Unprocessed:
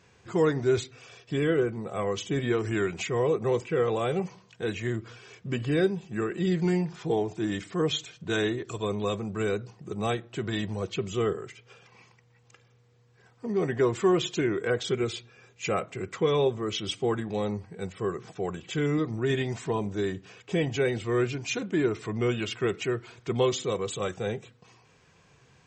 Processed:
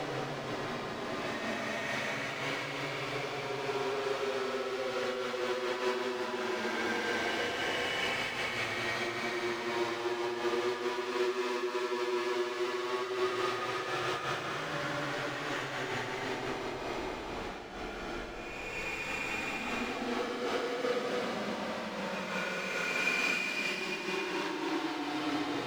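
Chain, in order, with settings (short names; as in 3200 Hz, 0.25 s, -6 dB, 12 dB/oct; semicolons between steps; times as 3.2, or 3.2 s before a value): spectral delay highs late, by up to 0.771 s; Schmitt trigger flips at -39 dBFS; three-band isolator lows -17 dB, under 290 Hz, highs -20 dB, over 5900 Hz; Paulstretch 22×, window 0.10 s, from 20.68; noise-modulated level, depth 65%; gain +3.5 dB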